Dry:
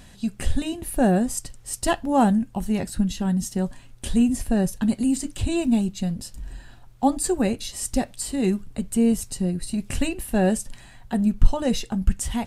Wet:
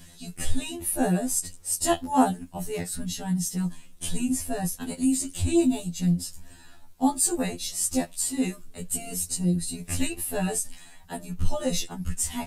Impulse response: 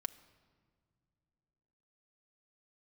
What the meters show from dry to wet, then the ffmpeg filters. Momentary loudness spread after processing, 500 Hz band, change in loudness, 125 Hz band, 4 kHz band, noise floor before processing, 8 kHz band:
10 LU, −4.5 dB, −3.0 dB, −2.5 dB, −0.5 dB, −48 dBFS, +4.0 dB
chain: -af "highshelf=frequency=5300:gain=11,flanger=delay=5.6:depth=6.3:regen=58:speed=0.26:shape=sinusoidal,afftfilt=real='re*2*eq(mod(b,4),0)':imag='im*2*eq(mod(b,4),0)':win_size=2048:overlap=0.75,volume=2.5dB"

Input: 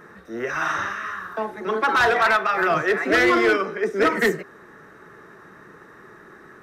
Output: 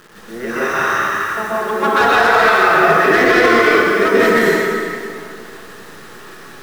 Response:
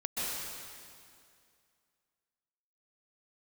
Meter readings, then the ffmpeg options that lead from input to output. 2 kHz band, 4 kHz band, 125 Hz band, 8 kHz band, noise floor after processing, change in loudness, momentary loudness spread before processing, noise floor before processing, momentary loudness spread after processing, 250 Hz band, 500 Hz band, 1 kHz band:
+8.0 dB, +8.0 dB, +8.5 dB, +9.0 dB, −37 dBFS, +8.0 dB, 13 LU, −47 dBFS, 14 LU, +7.5 dB, +8.5 dB, +8.5 dB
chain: -filter_complex "[0:a]acrusher=bits=8:dc=4:mix=0:aa=0.000001[link_01];[1:a]atrim=start_sample=2205[link_02];[link_01][link_02]afir=irnorm=-1:irlink=0,alimiter=level_in=4dB:limit=-1dB:release=50:level=0:latency=1,volume=-1dB"

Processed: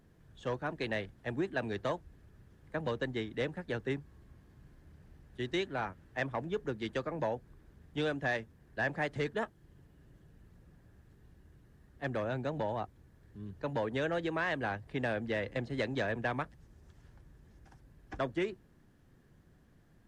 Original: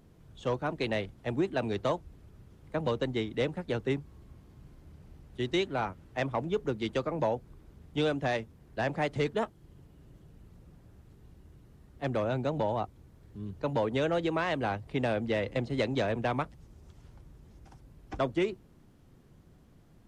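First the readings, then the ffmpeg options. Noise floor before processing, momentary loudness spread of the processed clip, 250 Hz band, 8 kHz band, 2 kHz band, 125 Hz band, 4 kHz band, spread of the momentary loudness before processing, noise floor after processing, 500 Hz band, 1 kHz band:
−59 dBFS, 9 LU, −5.0 dB, can't be measured, +0.5 dB, −5.0 dB, −4.5 dB, 8 LU, −64 dBFS, −5.0 dB, −4.5 dB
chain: -af "equalizer=frequency=1700:width=4.8:gain=10,volume=-5dB"

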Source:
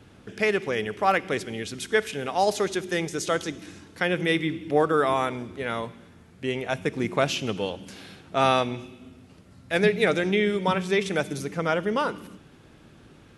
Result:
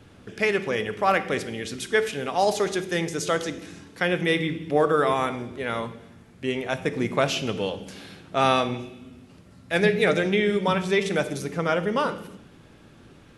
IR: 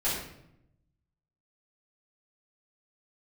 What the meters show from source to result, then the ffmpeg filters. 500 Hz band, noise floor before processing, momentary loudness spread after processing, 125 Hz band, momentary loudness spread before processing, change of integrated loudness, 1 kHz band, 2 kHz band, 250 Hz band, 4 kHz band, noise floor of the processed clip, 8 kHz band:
+1.0 dB, −53 dBFS, 12 LU, +1.5 dB, 12 LU, +1.0 dB, +0.5 dB, +1.0 dB, +1.0 dB, +1.0 dB, −51 dBFS, +1.0 dB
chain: -filter_complex "[0:a]asplit=2[link_01][link_02];[1:a]atrim=start_sample=2205,asetrate=52920,aresample=44100[link_03];[link_02][link_03]afir=irnorm=-1:irlink=0,volume=-16.5dB[link_04];[link_01][link_04]amix=inputs=2:normalize=0"

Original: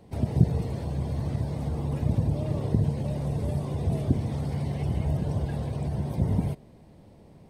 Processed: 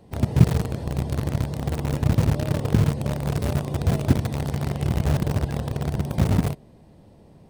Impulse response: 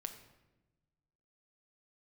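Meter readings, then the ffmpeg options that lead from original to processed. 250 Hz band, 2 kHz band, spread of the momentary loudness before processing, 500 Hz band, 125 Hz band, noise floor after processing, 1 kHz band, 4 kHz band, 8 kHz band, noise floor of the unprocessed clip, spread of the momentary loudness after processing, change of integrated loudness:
+4.5 dB, +12.0 dB, 6 LU, +5.0 dB, +4.0 dB, −51 dBFS, +7.0 dB, +11.0 dB, can't be measured, −52 dBFS, 7 LU, +4.5 dB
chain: -filter_complex "[0:a]bandreject=frequency=2200:width=15,asplit=2[link_01][link_02];[link_02]acrusher=bits=3:mix=0:aa=0.000001,volume=-6dB[link_03];[link_01][link_03]amix=inputs=2:normalize=0,volume=1.5dB"

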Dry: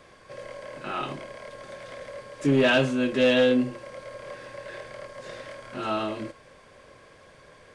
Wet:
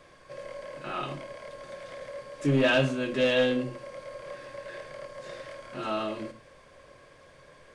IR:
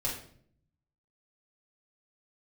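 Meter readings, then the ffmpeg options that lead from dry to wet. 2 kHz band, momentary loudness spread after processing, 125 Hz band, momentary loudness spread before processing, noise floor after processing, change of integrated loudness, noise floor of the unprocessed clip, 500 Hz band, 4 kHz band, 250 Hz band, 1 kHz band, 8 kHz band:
−2.5 dB, 19 LU, 0.0 dB, 21 LU, −55 dBFS, −4.5 dB, −53 dBFS, −3.0 dB, −2.5 dB, −5.0 dB, −3.0 dB, −3.0 dB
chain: -filter_complex "[0:a]asplit=2[link_01][link_02];[1:a]atrim=start_sample=2205,atrim=end_sample=6615[link_03];[link_02][link_03]afir=irnorm=-1:irlink=0,volume=-13dB[link_04];[link_01][link_04]amix=inputs=2:normalize=0,volume=-4dB"

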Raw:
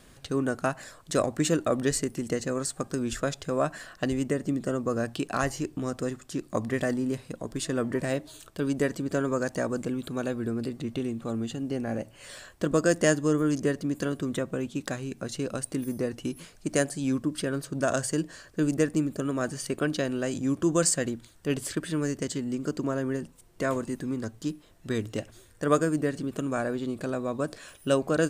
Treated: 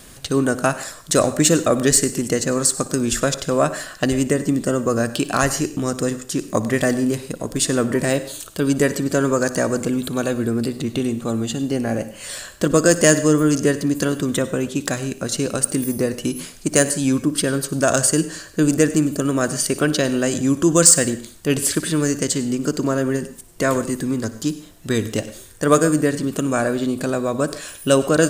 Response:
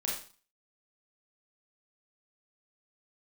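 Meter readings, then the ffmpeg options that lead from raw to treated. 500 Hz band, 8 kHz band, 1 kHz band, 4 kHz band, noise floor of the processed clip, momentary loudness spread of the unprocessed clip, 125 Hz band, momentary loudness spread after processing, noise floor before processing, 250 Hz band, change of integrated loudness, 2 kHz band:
+9.0 dB, +15.0 dB, +9.0 dB, +12.0 dB, −42 dBFS, 9 LU, +9.0 dB, 9 LU, −55 dBFS, +9.0 dB, +10.0 dB, +9.5 dB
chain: -filter_complex "[0:a]highshelf=frequency=5000:gain=9.5,acontrast=90,asplit=2[link_01][link_02];[1:a]atrim=start_sample=2205,adelay=59[link_03];[link_02][link_03]afir=irnorm=-1:irlink=0,volume=-17.5dB[link_04];[link_01][link_04]amix=inputs=2:normalize=0,volume=1.5dB"

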